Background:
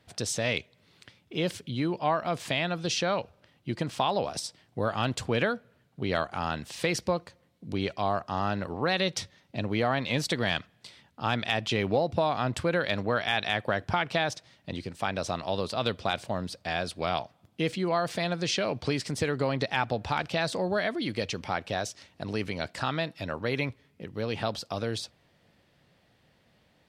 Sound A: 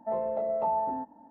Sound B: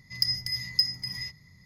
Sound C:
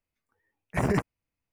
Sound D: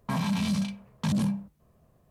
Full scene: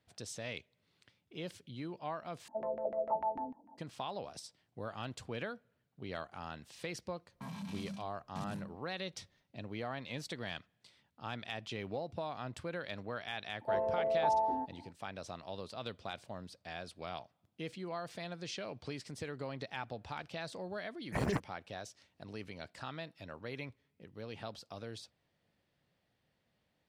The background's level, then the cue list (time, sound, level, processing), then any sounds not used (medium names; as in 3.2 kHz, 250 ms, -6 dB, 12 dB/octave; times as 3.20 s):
background -14 dB
2.48 s: replace with A -9.5 dB + LFO low-pass saw down 6.7 Hz 240–2000 Hz
7.32 s: add D -16.5 dB
13.61 s: add A -2.5 dB + comb 2.6 ms, depth 45%
20.38 s: add C -8.5 dB
not used: B